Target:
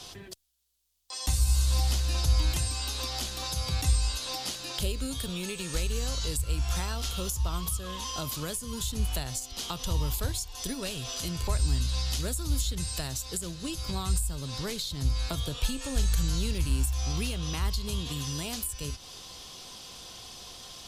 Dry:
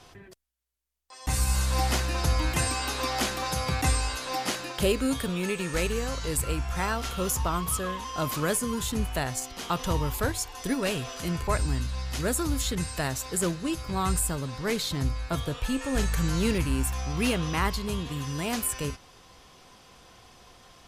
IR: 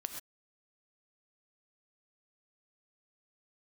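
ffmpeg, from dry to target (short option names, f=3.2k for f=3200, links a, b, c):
-filter_complex "[0:a]highshelf=f=2.7k:t=q:w=1.5:g=8.5,acrossover=split=100[a][b];[b]acompressor=threshold=-35dB:ratio=10[c];[a][c]amix=inputs=2:normalize=0,volume=3dB"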